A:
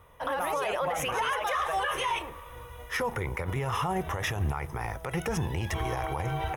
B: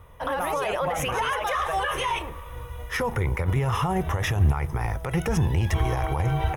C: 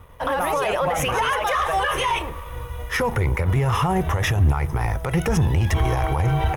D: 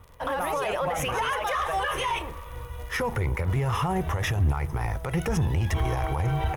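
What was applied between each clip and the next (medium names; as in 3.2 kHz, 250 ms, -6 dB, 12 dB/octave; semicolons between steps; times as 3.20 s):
bass shelf 180 Hz +9 dB; trim +2.5 dB
waveshaping leveller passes 1; trim +1 dB
crackle 60 per s -33 dBFS; trim -5.5 dB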